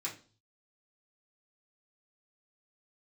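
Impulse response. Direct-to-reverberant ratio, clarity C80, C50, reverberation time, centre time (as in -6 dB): -6.5 dB, 16.5 dB, 11.0 dB, 0.40 s, 19 ms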